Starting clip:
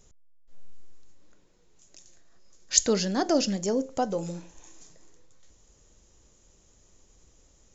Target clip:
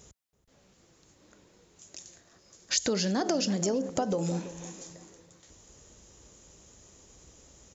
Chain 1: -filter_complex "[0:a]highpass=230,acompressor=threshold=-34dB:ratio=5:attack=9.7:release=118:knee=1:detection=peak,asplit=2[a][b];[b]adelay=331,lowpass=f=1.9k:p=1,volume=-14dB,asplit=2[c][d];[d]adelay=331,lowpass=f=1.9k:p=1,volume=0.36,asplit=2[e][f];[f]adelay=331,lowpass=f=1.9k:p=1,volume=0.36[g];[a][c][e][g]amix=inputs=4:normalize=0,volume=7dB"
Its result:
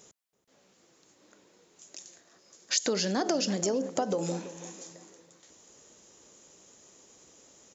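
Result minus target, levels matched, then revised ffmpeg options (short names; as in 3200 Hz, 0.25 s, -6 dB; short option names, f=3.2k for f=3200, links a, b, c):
125 Hz band -3.5 dB
-filter_complex "[0:a]highpass=62,acompressor=threshold=-34dB:ratio=5:attack=9.7:release=118:knee=1:detection=peak,asplit=2[a][b];[b]adelay=331,lowpass=f=1.9k:p=1,volume=-14dB,asplit=2[c][d];[d]adelay=331,lowpass=f=1.9k:p=1,volume=0.36,asplit=2[e][f];[f]adelay=331,lowpass=f=1.9k:p=1,volume=0.36[g];[a][c][e][g]amix=inputs=4:normalize=0,volume=7dB"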